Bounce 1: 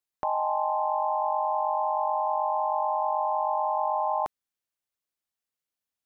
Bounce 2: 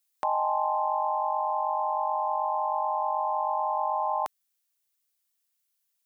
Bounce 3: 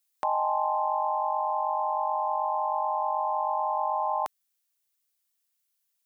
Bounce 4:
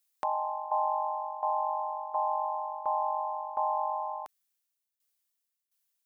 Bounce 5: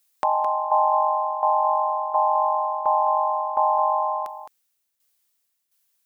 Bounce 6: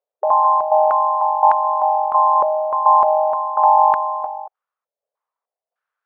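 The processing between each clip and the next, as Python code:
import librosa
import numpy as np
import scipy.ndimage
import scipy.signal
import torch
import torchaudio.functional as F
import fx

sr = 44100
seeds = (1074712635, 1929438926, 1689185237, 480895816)

y1 = fx.tilt_eq(x, sr, slope=3.5)
y1 = fx.rider(y1, sr, range_db=10, speed_s=2.0)
y2 = y1
y3 = fx.tremolo_shape(y2, sr, shape='saw_down', hz=1.4, depth_pct=80)
y4 = y3 + 10.0 ** (-9.0 / 20.0) * np.pad(y3, (int(214 * sr / 1000.0), 0))[:len(y3)]
y4 = y4 * librosa.db_to_amplitude(9.0)
y5 = fx.brickwall_highpass(y4, sr, low_hz=400.0)
y5 = fx.filter_held_lowpass(y5, sr, hz=3.3, low_hz=590.0, high_hz=1600.0)
y5 = y5 * librosa.db_to_amplitude(-1.0)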